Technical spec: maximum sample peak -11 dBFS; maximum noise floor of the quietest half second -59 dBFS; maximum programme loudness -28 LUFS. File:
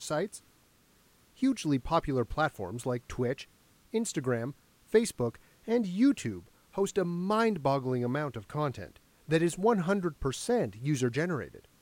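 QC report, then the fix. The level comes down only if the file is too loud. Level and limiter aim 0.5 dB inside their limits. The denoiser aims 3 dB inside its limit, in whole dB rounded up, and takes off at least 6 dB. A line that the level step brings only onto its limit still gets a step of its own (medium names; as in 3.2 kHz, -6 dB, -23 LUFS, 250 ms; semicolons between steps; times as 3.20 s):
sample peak -12.0 dBFS: pass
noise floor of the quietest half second -64 dBFS: pass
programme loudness -31.0 LUFS: pass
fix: none needed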